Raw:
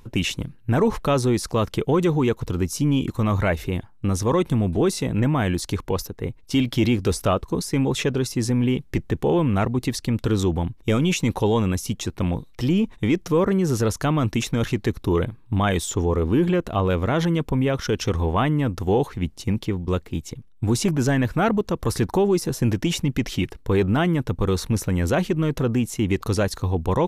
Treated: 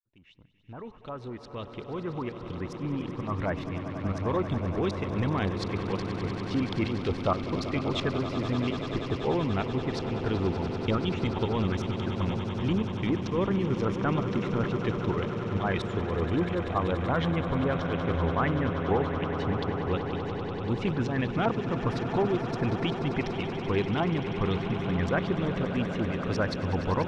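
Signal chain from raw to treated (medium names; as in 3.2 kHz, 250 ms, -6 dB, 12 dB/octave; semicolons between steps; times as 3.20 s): fade-in on the opening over 4.56 s; volume shaper 131 bpm, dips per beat 1, -13 dB, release 172 ms; LFO low-pass saw up 5.5 Hz 830–4500 Hz; on a send: echo with a slow build-up 96 ms, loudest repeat 8, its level -13 dB; on the sum: trim -8.5 dB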